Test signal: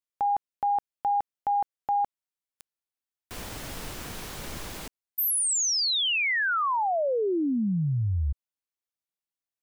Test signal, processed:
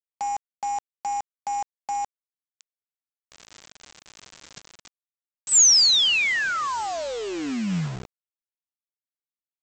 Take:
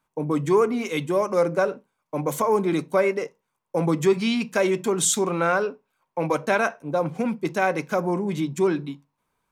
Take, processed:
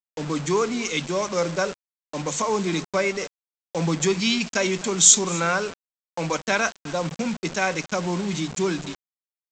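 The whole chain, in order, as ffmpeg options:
-af "lowshelf=f=120:t=q:w=3:g=-11.5,aecho=1:1:256:0.1,agate=range=-8dB:threshold=-34dB:ratio=16:release=51:detection=rms,crystalizer=i=8:c=0,aresample=16000,acrusher=bits=4:mix=0:aa=0.000001,aresample=44100,volume=-6dB"

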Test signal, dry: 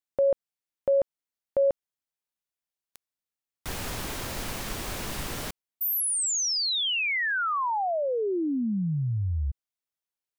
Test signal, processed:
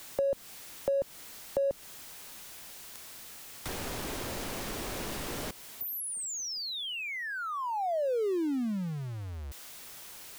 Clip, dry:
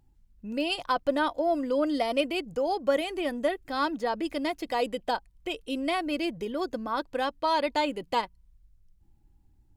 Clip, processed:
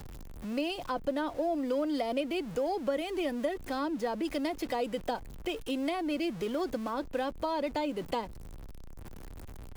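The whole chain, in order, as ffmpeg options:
-filter_complex "[0:a]aeval=exprs='val(0)+0.5*0.0119*sgn(val(0))':c=same,acrossover=split=240|620[a][b][c];[a]acompressor=threshold=-42dB:ratio=4[d];[b]acompressor=threshold=-32dB:ratio=4[e];[c]acompressor=threshold=-38dB:ratio=4[f];[d][e][f]amix=inputs=3:normalize=0"

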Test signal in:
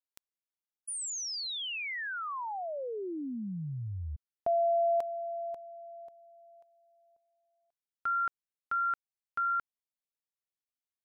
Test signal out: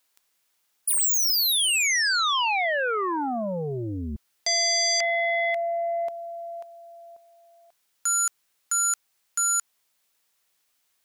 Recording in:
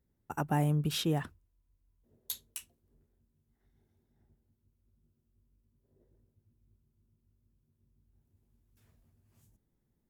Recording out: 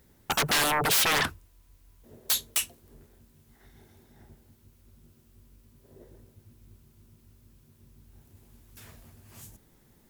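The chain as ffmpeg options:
-af "aeval=exprs='0.112*sin(PI/2*10*val(0)/0.112)':c=same,lowshelf=f=460:g=-9.5"

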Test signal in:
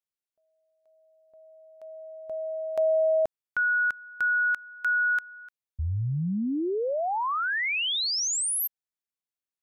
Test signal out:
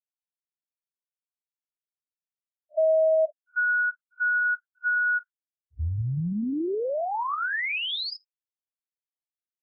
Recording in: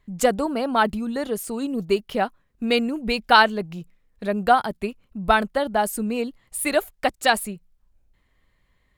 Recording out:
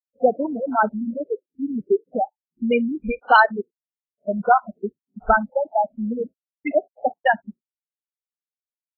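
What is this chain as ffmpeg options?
-af "aecho=1:1:155|310:0.0708|0.0113,afftfilt=real='re*gte(hypot(re,im),0.447)':imag='im*gte(hypot(re,im),0.447)':win_size=1024:overlap=0.75,volume=2.5dB" -ar 32000 -c:a libvorbis -b:a 32k

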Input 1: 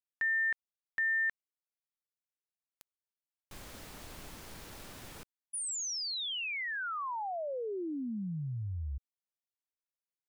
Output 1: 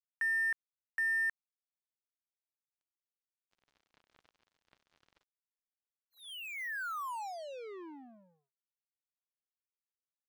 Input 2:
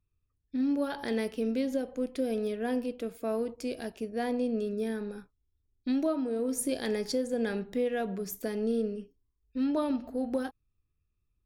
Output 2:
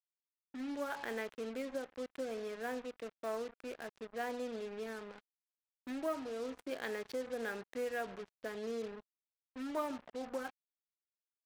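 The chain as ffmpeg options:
-af "adynamicsmooth=sensitivity=4.5:basefreq=1.5k,bandpass=f=1.5k:t=q:w=0.86:csg=0,acrusher=bits=7:mix=0:aa=0.5"

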